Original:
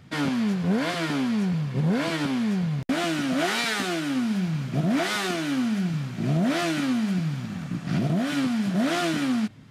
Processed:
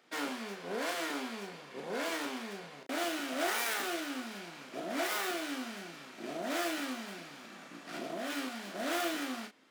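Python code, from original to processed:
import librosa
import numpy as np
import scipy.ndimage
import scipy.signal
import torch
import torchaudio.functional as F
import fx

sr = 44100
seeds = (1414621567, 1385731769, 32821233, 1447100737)

y = fx.tracing_dist(x, sr, depth_ms=0.21)
y = scipy.signal.sosfilt(scipy.signal.butter(4, 340.0, 'highpass', fs=sr, output='sos'), y)
y = fx.doubler(y, sr, ms=35.0, db=-6)
y = y * librosa.db_to_amplitude(-7.5)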